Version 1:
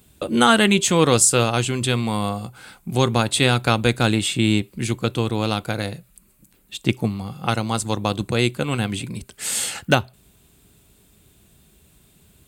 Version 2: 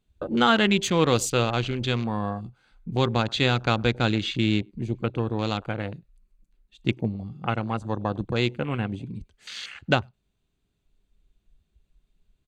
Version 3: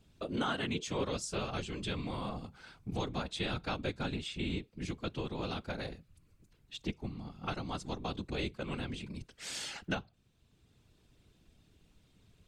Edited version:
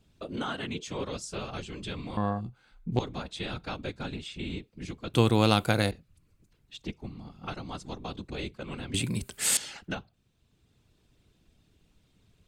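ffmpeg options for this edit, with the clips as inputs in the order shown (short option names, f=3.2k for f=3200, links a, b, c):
-filter_complex "[0:a]asplit=2[a][b];[2:a]asplit=4[c][d][e][f];[c]atrim=end=2.172[g];[1:a]atrim=start=2.168:end=2.992[h];[d]atrim=start=2.988:end=5.142[i];[a]atrim=start=5.138:end=5.912[j];[e]atrim=start=5.908:end=8.942[k];[b]atrim=start=8.938:end=9.572[l];[f]atrim=start=9.568[m];[g][h]acrossfade=d=0.004:c1=hsin:c2=hsin[n];[n][i]acrossfade=d=0.004:c1=hsin:c2=hsin[o];[o][j]acrossfade=d=0.004:c1=hsin:c2=hsin[p];[p][k]acrossfade=d=0.004:c1=hsin:c2=hsin[q];[q][l]acrossfade=d=0.004:c1=hsin:c2=hsin[r];[r][m]acrossfade=d=0.004:c1=hsin:c2=hsin"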